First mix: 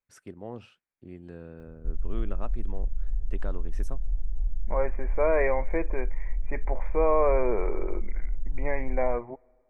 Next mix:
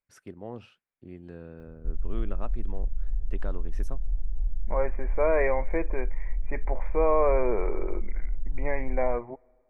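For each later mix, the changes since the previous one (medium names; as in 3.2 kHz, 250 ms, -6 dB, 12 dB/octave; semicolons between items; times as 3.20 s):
master: add peaking EQ 7.9 kHz -4.5 dB 0.56 oct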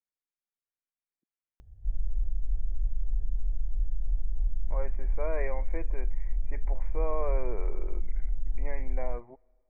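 first voice: muted; second voice -10.5 dB; master: add peaking EQ 7.9 kHz +4.5 dB 0.56 oct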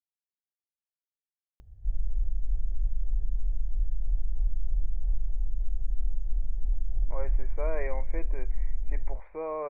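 speech: entry +2.40 s; background: send +10.0 dB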